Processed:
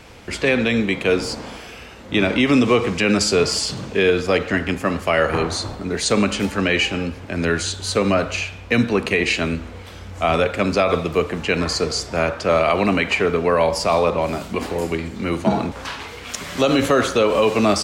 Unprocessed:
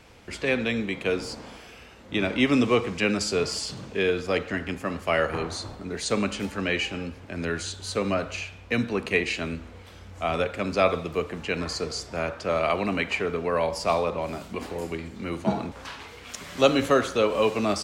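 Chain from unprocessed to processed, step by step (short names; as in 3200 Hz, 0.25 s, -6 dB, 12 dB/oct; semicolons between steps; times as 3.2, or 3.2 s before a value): limiter -16 dBFS, peak gain reduction 11 dB; gain +9 dB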